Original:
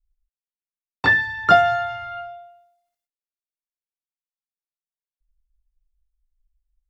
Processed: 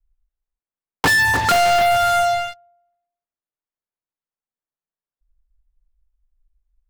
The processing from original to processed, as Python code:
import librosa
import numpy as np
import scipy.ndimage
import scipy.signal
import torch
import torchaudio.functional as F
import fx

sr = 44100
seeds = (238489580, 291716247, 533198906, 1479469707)

y = scipy.signal.sosfilt(scipy.signal.butter(2, 1500.0, 'lowpass', fs=sr, output='sos'), x)
y = y + 10.0 ** (-16.5 / 20.0) * np.pad(y, (int(297 * sr / 1000.0), 0))[:len(y)]
y = fx.leveller(y, sr, passes=5)
y = 10.0 ** (-17.0 / 20.0) * np.tanh(y / 10.0 ** (-17.0 / 20.0))
y = fx.band_squash(y, sr, depth_pct=40)
y = F.gain(torch.from_numpy(y), 3.0).numpy()